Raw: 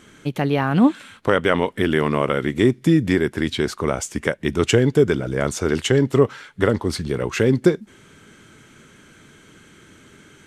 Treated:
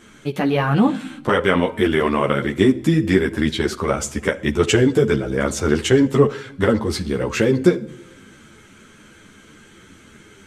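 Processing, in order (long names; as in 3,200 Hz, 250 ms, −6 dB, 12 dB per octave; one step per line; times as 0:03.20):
tuned comb filter 260 Hz, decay 1.3 s, mix 40%
on a send at −18 dB: convolution reverb RT60 0.70 s, pre-delay 46 ms
on the sum: string-ensemble chorus
level +9 dB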